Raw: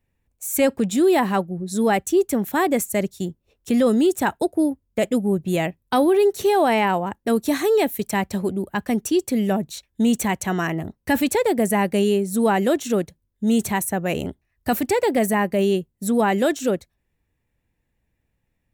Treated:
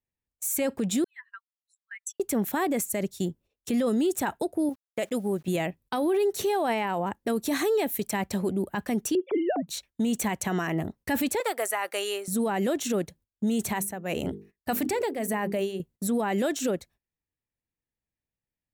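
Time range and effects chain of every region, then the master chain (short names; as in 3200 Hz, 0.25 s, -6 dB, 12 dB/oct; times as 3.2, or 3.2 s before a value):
1.04–2.2 spectral contrast raised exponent 2.3 + steep high-pass 1400 Hz 72 dB/oct + compressor 4:1, threshold -31 dBFS
4.69–5.48 low shelf 290 Hz -10 dB + requantised 10-bit, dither none
9.15–9.68 sine-wave speech + bell 390 Hz +5 dB 2.4 oct
11.4–12.28 Bessel high-pass 760 Hz, order 4 + bell 1300 Hz +10 dB 0.28 oct
13.69–15.8 notches 50/100/150/200/250/300/350/400/450 Hz + tremolo 1.7 Hz, depth 76% + sustainer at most 150 dB/s
whole clip: gate -48 dBFS, range -18 dB; low shelf 110 Hz -6 dB; limiter -19 dBFS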